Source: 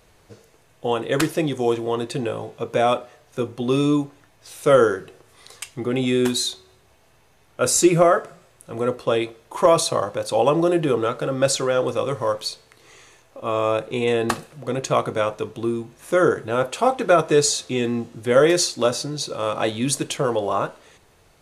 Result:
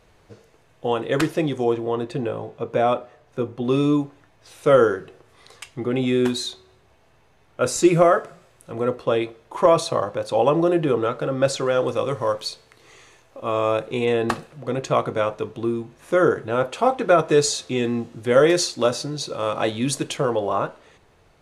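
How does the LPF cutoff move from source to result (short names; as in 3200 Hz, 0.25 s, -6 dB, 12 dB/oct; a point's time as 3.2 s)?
LPF 6 dB/oct
3900 Hz
from 1.64 s 1700 Hz
from 3.65 s 3100 Hz
from 7.85 s 6700 Hz
from 8.72 s 3000 Hz
from 11.66 s 6800 Hz
from 14.05 s 3500 Hz
from 17.29 s 6100 Hz
from 20.25 s 3000 Hz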